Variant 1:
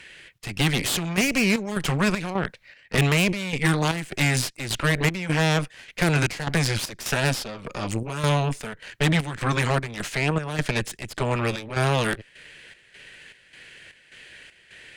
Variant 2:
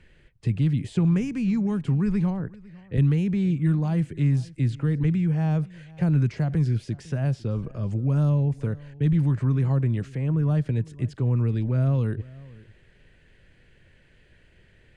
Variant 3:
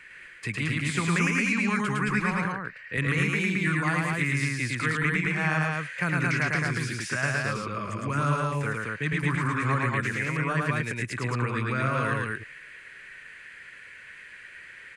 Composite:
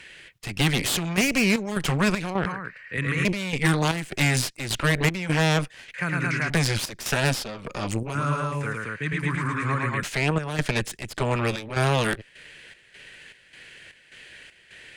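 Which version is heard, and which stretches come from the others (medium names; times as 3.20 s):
1
2.46–3.25 s: from 3
5.94–6.50 s: from 3
8.15–10.03 s: from 3
not used: 2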